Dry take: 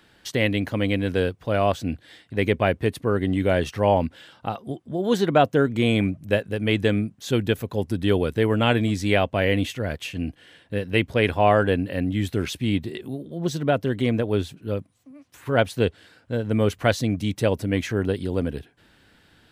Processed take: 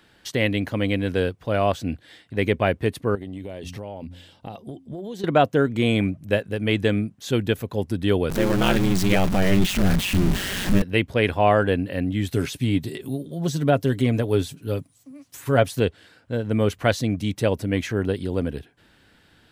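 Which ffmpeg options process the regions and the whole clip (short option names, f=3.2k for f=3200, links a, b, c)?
-filter_complex "[0:a]asettb=1/sr,asplit=3[a][b][c];[a]atrim=end=3.154[d];[b]atrim=start=3.15:end=5.24,asetpts=PTS-STARTPTS,afade=t=in:d=0.004:c=qsin,afade=t=out:st=2.086:d=0.004:c=qsin,equalizer=f=1.4k:t=o:w=0.89:g=-11.5,bandreject=f=89.21:t=h:w=4,bandreject=f=178.42:t=h:w=4,bandreject=f=267.63:t=h:w=4,acompressor=threshold=-29dB:ratio=16:attack=3.2:release=140:knee=1:detection=peak[e];[c]atrim=start=5.236[f];[d][e]acrossfade=d=0.004:c1=hsin:c2=qsin[g];[g][f]acrossfade=d=0.004:c1=qsin:c2=hsin,asettb=1/sr,asplit=3[h][i][j];[h]atrim=end=8.304[k];[i]atrim=start=8.3:end=10.82,asetpts=PTS-STARTPTS,afade=t=in:d=0.004:c=qsin,afade=t=out:st=2.516:d=0.004:c=qsin,aeval=exprs='val(0)+0.5*0.1*sgn(val(0))':c=same,asubboost=boost=7:cutoff=180,aeval=exprs='val(0)*sin(2*PI*95*n/s)':c=same[l];[j]atrim=start=10.816[m];[k][l]acrossfade=d=0.004:c1=hsin:c2=qsin[n];[n][m]acrossfade=d=0.004:c1=qsin:c2=hsin,asettb=1/sr,asplit=3[o][p][q];[o]atrim=end=12.314[r];[p]atrim=start=12.31:end=15.8,asetpts=PTS-STARTPTS,afade=t=in:d=0.004:c=qsin,afade=t=out:st=3.486:d=0.004:c=qsin,acrossover=split=2500[s][t];[t]acompressor=threshold=-41dB:ratio=4:attack=1:release=60[u];[s][u]amix=inputs=2:normalize=0,bass=f=250:g=2,treble=f=4k:g=11,aecho=1:1:7.2:0.38,atrim=end_sample=153909[v];[q]atrim=start=15.796[w];[r][v]acrossfade=d=0.004:c1=hsin:c2=qsin[x];[x][w]acrossfade=d=0.004:c1=qsin:c2=hsin"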